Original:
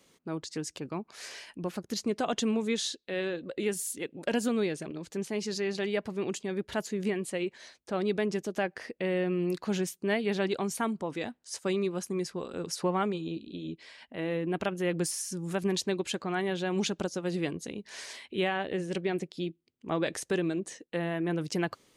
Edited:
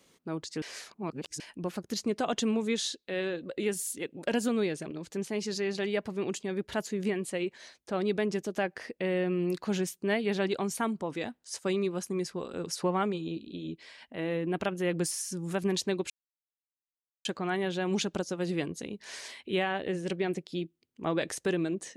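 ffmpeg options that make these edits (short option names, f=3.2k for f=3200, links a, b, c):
-filter_complex "[0:a]asplit=4[a][b][c][d];[a]atrim=end=0.622[e];[b]atrim=start=0.618:end=1.402,asetpts=PTS-STARTPTS,areverse[f];[c]atrim=start=1.398:end=16.1,asetpts=PTS-STARTPTS,afade=t=out:st=14.698:d=0.004:c=hsin,apad=pad_dur=1.15[g];[d]atrim=start=16.1,asetpts=PTS-STARTPTS,afade=t=in:d=0.004:c=hsin[h];[e][f]acrossfade=d=0.004:c1=hsin:c2=hsin[i];[g][h]concat=n=2:v=0:a=1[j];[i][j]acrossfade=d=0.004:c1=hsin:c2=hsin"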